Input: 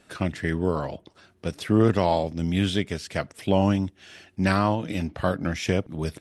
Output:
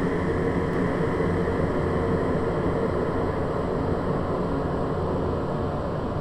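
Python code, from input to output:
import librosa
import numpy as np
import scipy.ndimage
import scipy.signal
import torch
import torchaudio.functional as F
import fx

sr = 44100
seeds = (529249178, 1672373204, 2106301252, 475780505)

p1 = fx.dmg_wind(x, sr, seeds[0], corner_hz=240.0, level_db=-27.0)
p2 = fx.hpss(p1, sr, part='harmonic', gain_db=-4)
p3 = fx.paulstretch(p2, sr, seeds[1], factor=24.0, window_s=1.0, from_s=0.67)
p4 = p3 + fx.echo_single(p3, sr, ms=734, db=-5.0, dry=0)
y = p4 * librosa.db_to_amplitude(2.0)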